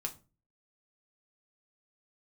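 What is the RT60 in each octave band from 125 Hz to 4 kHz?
0.55, 0.45, 0.35, 0.30, 0.25, 0.25 seconds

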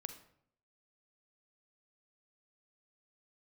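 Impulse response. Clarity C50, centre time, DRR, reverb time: 10.0 dB, 11 ms, 8.0 dB, 0.65 s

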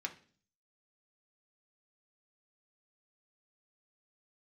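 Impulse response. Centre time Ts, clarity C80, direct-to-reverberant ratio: 8 ms, 19.0 dB, 2.0 dB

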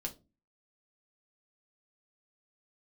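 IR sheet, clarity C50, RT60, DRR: 16.0 dB, 0.30 s, 1.0 dB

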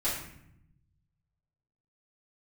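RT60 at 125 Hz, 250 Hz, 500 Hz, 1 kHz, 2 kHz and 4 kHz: 1.8, 1.3, 0.75, 0.70, 0.70, 0.55 seconds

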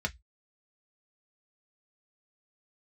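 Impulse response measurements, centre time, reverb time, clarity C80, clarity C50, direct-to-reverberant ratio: 4 ms, 0.10 s, 39.5 dB, 26.5 dB, 3.0 dB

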